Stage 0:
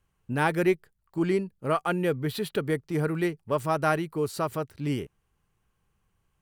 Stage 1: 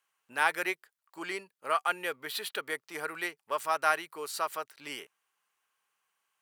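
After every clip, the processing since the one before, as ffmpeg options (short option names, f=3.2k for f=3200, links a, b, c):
-af "highpass=980,volume=2dB"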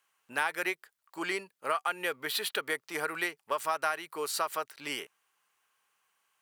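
-af "acompressor=threshold=-31dB:ratio=6,volume=4.5dB"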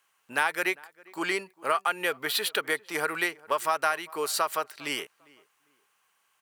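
-filter_complex "[0:a]asplit=2[a][b];[b]adelay=401,lowpass=f=1.8k:p=1,volume=-23dB,asplit=2[c][d];[d]adelay=401,lowpass=f=1.8k:p=1,volume=0.25[e];[a][c][e]amix=inputs=3:normalize=0,volume=4.5dB"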